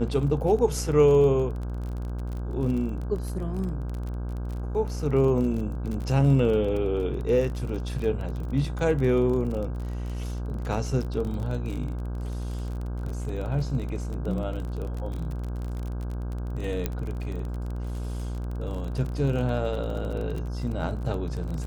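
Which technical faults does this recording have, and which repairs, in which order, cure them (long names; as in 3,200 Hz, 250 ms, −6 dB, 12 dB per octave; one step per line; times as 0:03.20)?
mains buzz 60 Hz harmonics 27 −31 dBFS
surface crackle 32 per second −32 dBFS
0:16.86: click −13 dBFS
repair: click removal
hum removal 60 Hz, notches 27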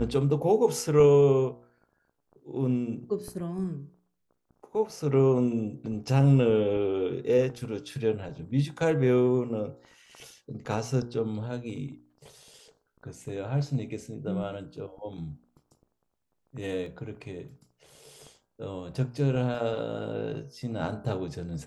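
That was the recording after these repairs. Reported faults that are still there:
0:16.86: click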